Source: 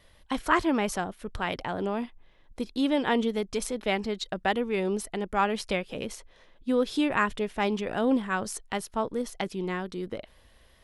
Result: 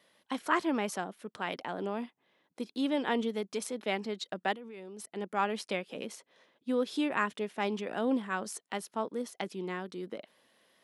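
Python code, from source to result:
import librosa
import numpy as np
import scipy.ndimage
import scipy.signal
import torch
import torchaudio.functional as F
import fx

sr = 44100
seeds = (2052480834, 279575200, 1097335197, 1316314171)

y = fx.level_steps(x, sr, step_db=20, at=(4.53, 5.16))
y = scipy.signal.sosfilt(scipy.signal.butter(4, 180.0, 'highpass', fs=sr, output='sos'), y)
y = y * 10.0 ** (-5.0 / 20.0)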